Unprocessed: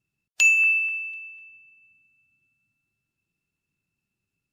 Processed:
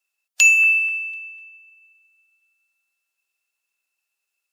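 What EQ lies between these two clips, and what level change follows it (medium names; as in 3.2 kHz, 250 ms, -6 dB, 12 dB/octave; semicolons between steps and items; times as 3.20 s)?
high-pass 570 Hz 24 dB/octave; treble shelf 4.7 kHz +7 dB; +2.5 dB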